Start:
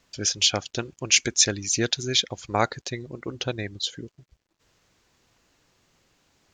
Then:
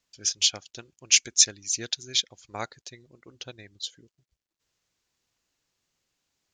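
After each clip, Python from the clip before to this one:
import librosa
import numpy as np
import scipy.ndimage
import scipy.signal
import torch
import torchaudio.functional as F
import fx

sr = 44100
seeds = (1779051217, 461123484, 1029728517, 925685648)

y = fx.high_shelf(x, sr, hz=2600.0, db=9.5)
y = fx.upward_expand(y, sr, threshold_db=-30.0, expansion=1.5)
y = y * 10.0 ** (-6.5 / 20.0)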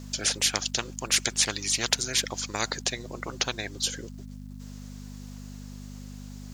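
y = fx.peak_eq(x, sr, hz=2600.0, db=-6.5, octaves=1.5)
y = fx.add_hum(y, sr, base_hz=50, snr_db=19)
y = fx.spectral_comp(y, sr, ratio=4.0)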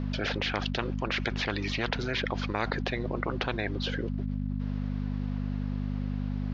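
y = scipy.ndimage.gaussian_filter1d(x, 3.0, mode='constant')
y = fx.env_flatten(y, sr, amount_pct=70)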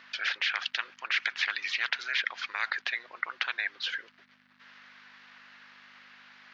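y = fx.highpass_res(x, sr, hz=1700.0, q=1.8)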